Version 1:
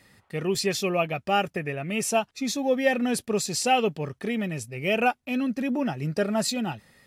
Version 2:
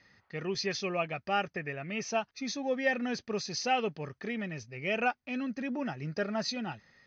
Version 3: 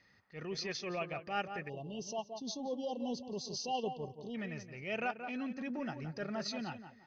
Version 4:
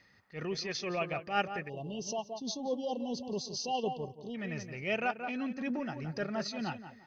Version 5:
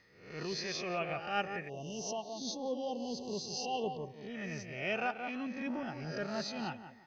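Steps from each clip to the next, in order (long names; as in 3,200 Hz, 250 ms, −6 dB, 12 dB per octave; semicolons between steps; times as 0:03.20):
Chebyshev low-pass with heavy ripple 6,400 Hz, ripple 6 dB; level −2.5 dB
tape delay 173 ms, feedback 31%, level −8 dB, low-pass 1,700 Hz; transient designer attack −8 dB, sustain −3 dB; time-frequency box erased 0:01.69–0:04.35, 1,100–2,700 Hz; level −4 dB
amplitude modulation by smooth noise, depth 60%; level +7 dB
peak hold with a rise ahead of every peak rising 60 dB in 0.62 s; level −4 dB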